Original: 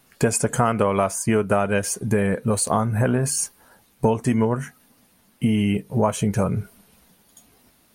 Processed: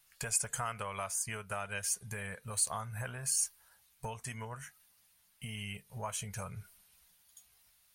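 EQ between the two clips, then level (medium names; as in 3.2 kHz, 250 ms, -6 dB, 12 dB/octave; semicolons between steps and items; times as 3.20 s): amplifier tone stack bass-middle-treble 10-0-10; -6.5 dB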